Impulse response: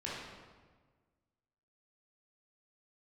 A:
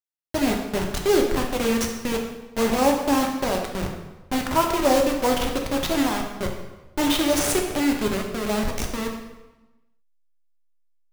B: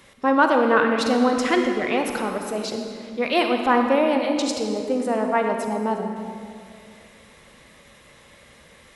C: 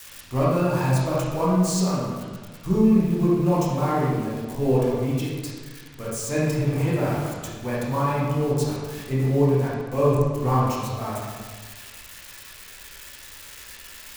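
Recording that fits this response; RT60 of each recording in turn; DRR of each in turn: C; 1.1, 2.3, 1.5 s; 1.0, 3.0, -7.5 dB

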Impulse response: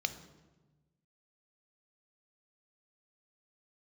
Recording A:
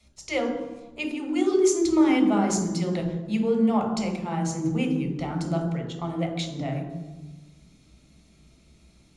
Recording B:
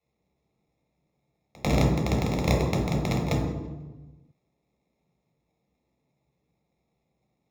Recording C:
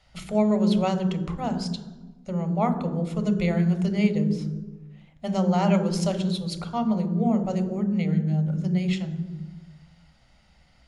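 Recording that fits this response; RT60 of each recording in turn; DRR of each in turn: C; 1.2, 1.2, 1.2 s; 3.5, -1.0, 10.0 dB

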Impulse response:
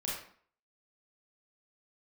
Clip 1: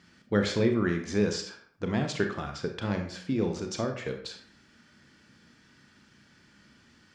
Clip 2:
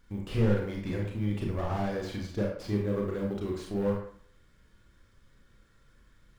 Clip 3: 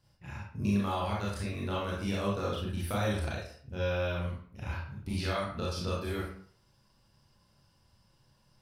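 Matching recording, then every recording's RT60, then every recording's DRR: 3; 0.50, 0.50, 0.50 s; 4.5, -1.0, -6.0 dB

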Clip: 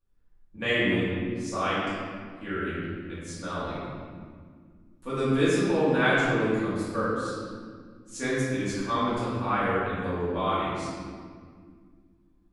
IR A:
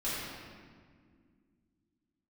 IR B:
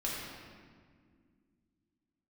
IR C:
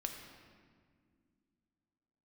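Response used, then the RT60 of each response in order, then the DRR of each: A; 2.0, 2.0, 2.0 s; -12.0, -6.0, 3.0 dB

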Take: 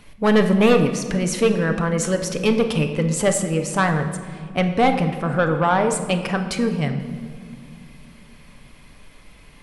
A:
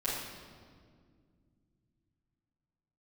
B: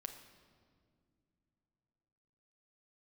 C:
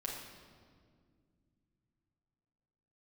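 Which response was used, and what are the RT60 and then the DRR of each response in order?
B; 2.0 s, not exponential, 2.0 s; -11.5, 5.0, -3.5 dB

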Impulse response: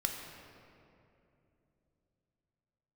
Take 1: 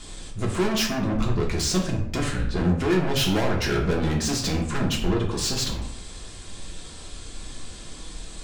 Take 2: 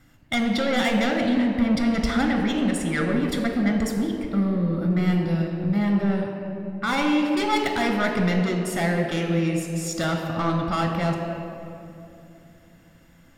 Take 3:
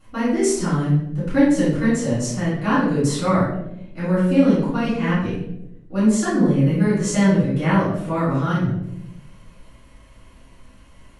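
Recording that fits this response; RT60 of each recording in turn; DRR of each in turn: 2; 0.65, 2.9, 0.85 s; -1.5, 1.5, -12.5 dB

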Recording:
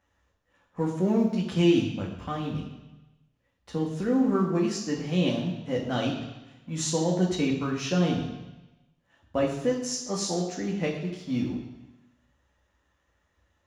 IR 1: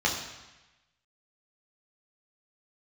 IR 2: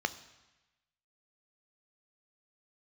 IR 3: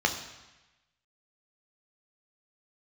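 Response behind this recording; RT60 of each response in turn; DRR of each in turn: 1; 1.1, 1.1, 1.1 s; -2.5, 11.0, 3.5 dB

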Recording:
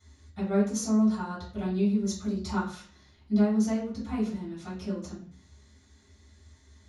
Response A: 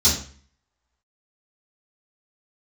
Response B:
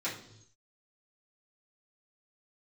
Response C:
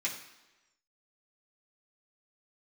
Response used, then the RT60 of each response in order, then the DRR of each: A; 0.45, 0.75, 1.1 s; -12.5, -10.0, -6.0 dB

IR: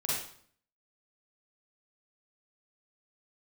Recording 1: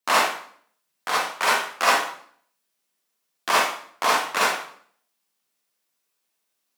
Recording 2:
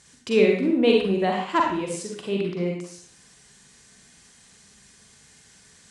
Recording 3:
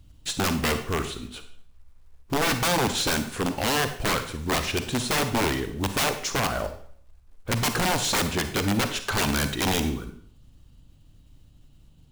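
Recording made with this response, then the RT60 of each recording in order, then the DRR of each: 1; 0.55, 0.55, 0.55 s; -7.5, -0.5, 8.5 dB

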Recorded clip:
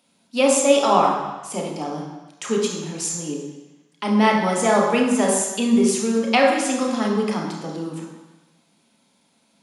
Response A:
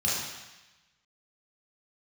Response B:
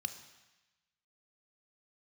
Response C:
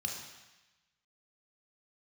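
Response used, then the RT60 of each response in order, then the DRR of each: C; 1.1, 1.1, 1.1 s; -7.5, 8.0, 0.0 dB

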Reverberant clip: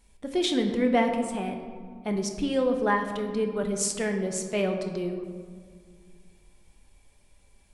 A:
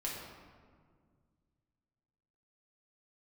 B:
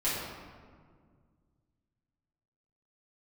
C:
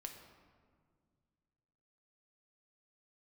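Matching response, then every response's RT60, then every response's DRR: C; 1.9, 1.9, 1.9 s; -4.5, -11.0, 3.5 dB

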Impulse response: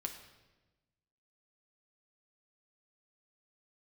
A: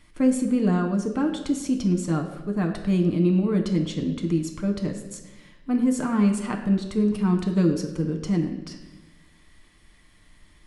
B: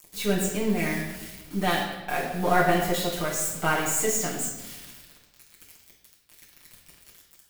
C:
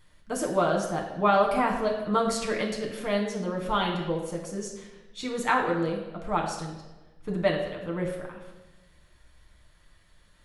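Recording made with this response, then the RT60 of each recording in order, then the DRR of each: A; 1.2, 1.1, 1.2 s; 3.0, -6.5, -1.0 dB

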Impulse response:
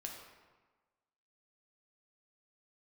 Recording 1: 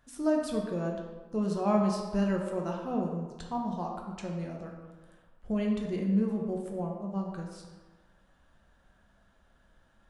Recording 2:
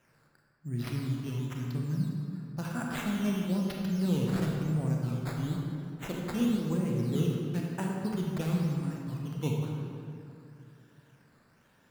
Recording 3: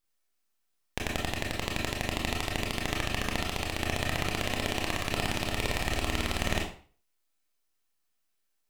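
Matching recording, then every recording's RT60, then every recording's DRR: 1; 1.3, 2.7, 0.45 s; 0.0, -1.5, -1.5 dB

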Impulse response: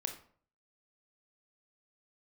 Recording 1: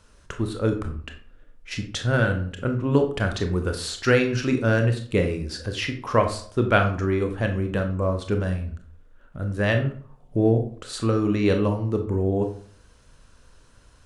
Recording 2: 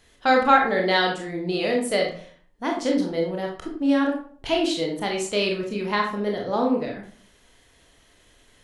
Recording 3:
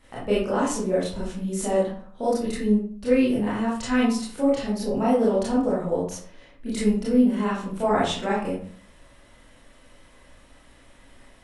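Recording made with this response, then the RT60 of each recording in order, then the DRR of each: 1; 0.50, 0.50, 0.50 s; 5.0, 0.0, -8.5 dB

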